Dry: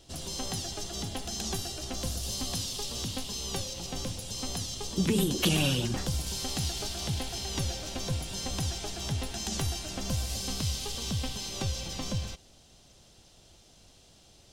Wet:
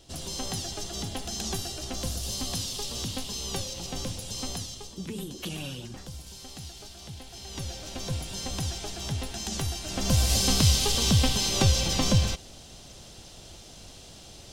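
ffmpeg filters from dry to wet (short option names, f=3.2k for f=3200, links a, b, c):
-af "volume=22dB,afade=t=out:st=4.43:d=0.55:silence=0.266073,afade=t=in:st=7.24:d=0.94:silence=0.298538,afade=t=in:st=9.81:d=0.52:silence=0.316228"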